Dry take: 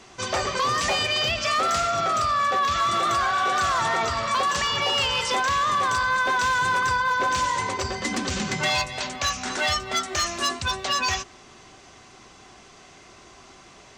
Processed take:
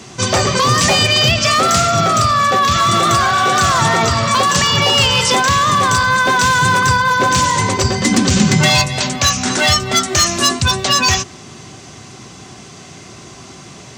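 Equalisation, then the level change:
high-pass filter 82 Hz
parametric band 130 Hz +14.5 dB 2.4 octaves
high-shelf EQ 4,200 Hz +10 dB
+7.0 dB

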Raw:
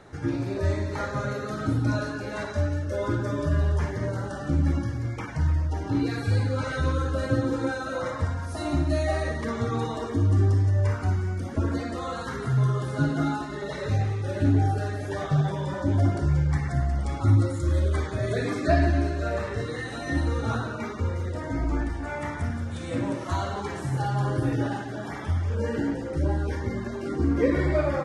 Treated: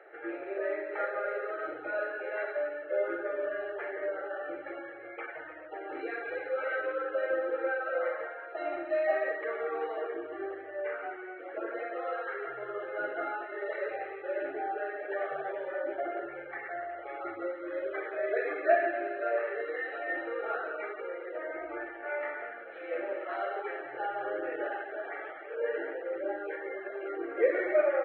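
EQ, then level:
elliptic high-pass filter 310 Hz, stop band 40 dB
linear-phase brick-wall low-pass 4,100 Hz
phaser with its sweep stopped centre 1,000 Hz, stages 6
+1.0 dB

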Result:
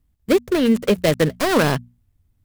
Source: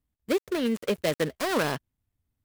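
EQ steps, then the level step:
low-shelf EQ 170 Hz +11.5 dB
mains-hum notches 60/120/180/240 Hz
+7.5 dB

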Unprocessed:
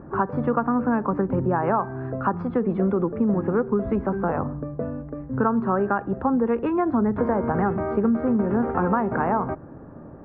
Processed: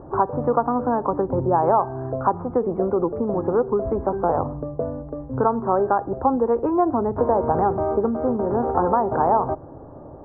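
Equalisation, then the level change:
low-pass with resonance 860 Hz, resonance Q 1.6
high-frequency loss of the air 290 metres
parametric band 200 Hz −11 dB 0.7 octaves
+3.5 dB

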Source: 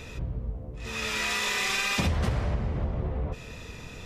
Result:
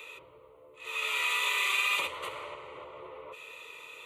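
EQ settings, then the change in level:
high-pass filter 690 Hz 12 dB per octave
phaser with its sweep stopped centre 1,100 Hz, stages 8
+2.0 dB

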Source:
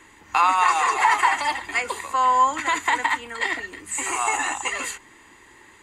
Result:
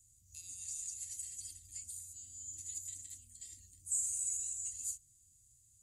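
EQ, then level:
Chebyshev band-stop filter 110–6,900 Hz, order 3
low-shelf EQ 66 Hz −7.5 dB
−5.0 dB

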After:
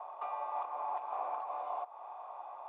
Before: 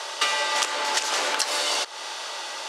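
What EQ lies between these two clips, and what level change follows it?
formant resonators in series a
+1.5 dB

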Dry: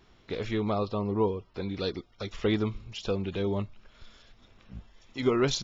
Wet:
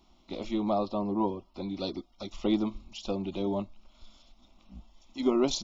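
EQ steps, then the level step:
dynamic equaliser 480 Hz, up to +7 dB, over −40 dBFS, Q 0.95
phaser with its sweep stopped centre 450 Hz, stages 6
0.0 dB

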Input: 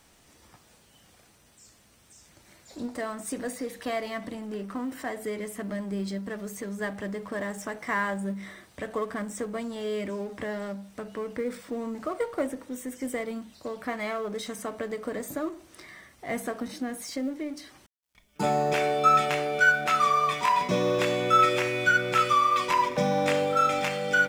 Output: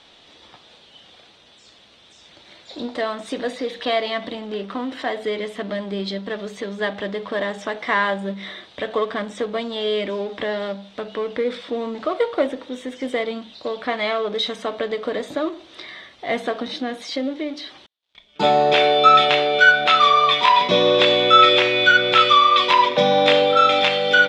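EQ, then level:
low-pass with resonance 3,600 Hz, resonance Q 5
parametric band 560 Hz +12.5 dB 2.9 octaves
high-shelf EQ 2,300 Hz +11 dB
−3.5 dB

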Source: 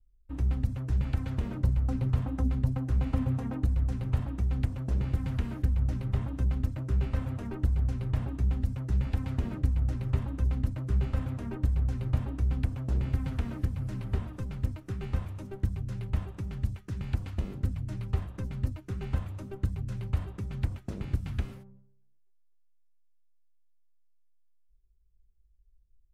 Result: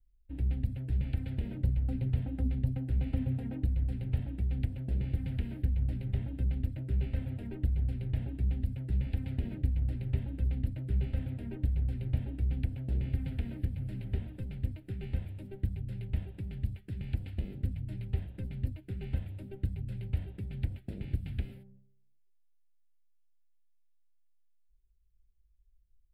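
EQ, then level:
phaser with its sweep stopped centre 2,700 Hz, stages 4
−3.0 dB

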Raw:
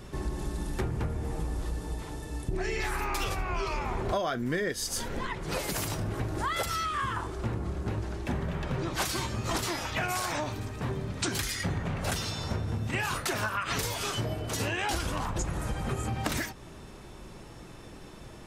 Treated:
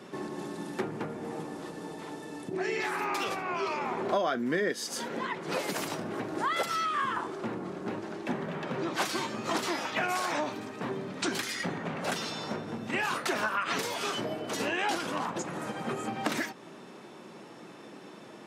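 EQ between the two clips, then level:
high-pass filter 190 Hz 24 dB per octave
low-pass filter 3,800 Hz 6 dB per octave
+2.0 dB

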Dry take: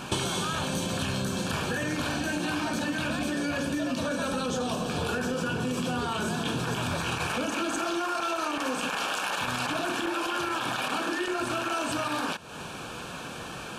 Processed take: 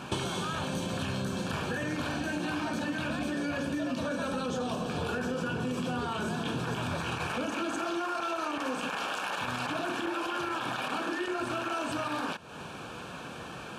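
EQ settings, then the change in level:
high-pass filter 50 Hz
high-shelf EQ 4,200 Hz −7.5 dB
−2.5 dB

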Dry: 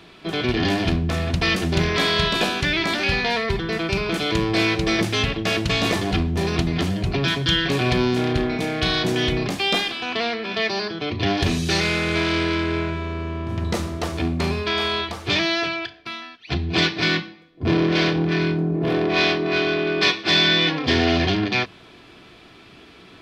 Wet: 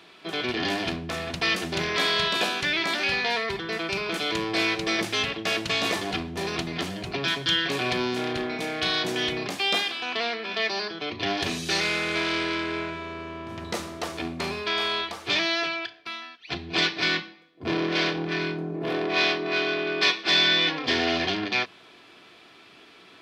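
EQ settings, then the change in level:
high-pass filter 470 Hz 6 dB per octave
−2.5 dB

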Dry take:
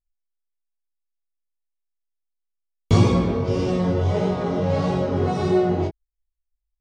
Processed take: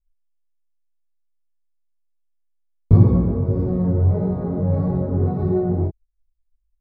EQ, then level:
moving average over 15 samples
spectral tilt −2.5 dB per octave
low-shelf EQ 330 Hz +5.5 dB
−8.0 dB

